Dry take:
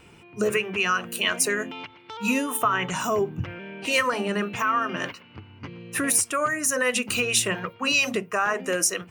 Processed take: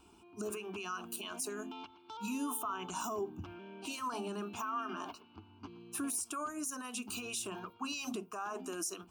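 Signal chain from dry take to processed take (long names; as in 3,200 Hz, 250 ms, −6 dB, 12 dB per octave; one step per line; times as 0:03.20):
0:04.77–0:05.24: parametric band 3,000 Hz → 400 Hz +11.5 dB 0.67 octaves
brickwall limiter −20 dBFS, peak gain reduction 10.5 dB
phaser with its sweep stopped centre 520 Hz, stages 6
level −6.5 dB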